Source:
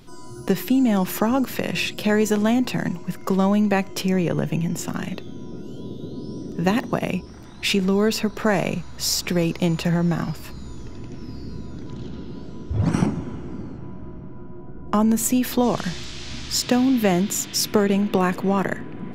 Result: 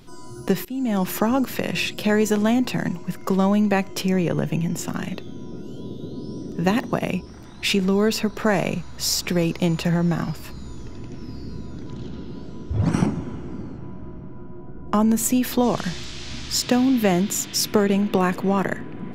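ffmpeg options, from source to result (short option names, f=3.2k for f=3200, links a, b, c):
-filter_complex "[0:a]asplit=2[a][b];[a]atrim=end=0.65,asetpts=PTS-STARTPTS,afade=t=out:st=0.646:d=0.004:c=hsin:silence=0.0841395[c];[b]atrim=start=0.65,asetpts=PTS-STARTPTS,afade=t=in:d=0.4:silence=0.0841395[d];[c][d]concat=n=2:v=0:a=1"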